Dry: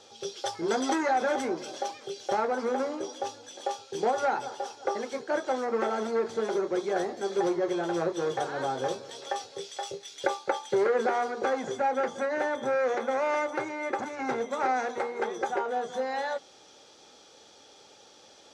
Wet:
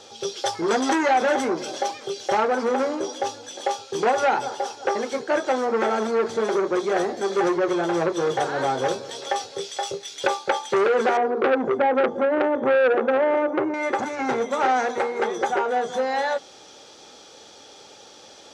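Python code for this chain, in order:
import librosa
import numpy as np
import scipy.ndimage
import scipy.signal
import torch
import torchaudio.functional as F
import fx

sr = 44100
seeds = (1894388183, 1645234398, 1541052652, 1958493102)

y = fx.curve_eq(x, sr, hz=(170.0, 350.0, 8400.0), db=(0, 8, -28), at=(11.17, 13.74))
y = fx.transformer_sat(y, sr, knee_hz=1700.0)
y = F.gain(torch.from_numpy(y), 8.0).numpy()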